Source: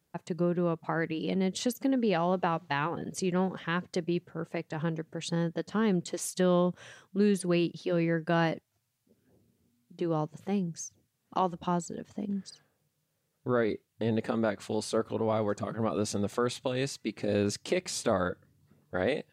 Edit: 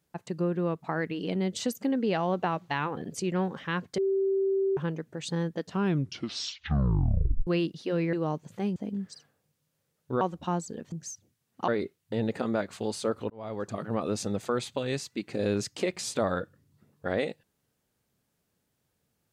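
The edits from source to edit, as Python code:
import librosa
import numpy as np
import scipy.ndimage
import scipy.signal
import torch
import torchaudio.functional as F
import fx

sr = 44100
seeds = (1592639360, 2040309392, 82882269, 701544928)

y = fx.edit(x, sr, fx.bleep(start_s=3.98, length_s=0.79, hz=388.0, db=-23.0),
    fx.tape_stop(start_s=5.64, length_s=1.83),
    fx.cut(start_s=8.13, length_s=1.89),
    fx.swap(start_s=10.65, length_s=0.76, other_s=12.12, other_length_s=1.45),
    fx.fade_in_span(start_s=15.19, length_s=0.46), tone=tone)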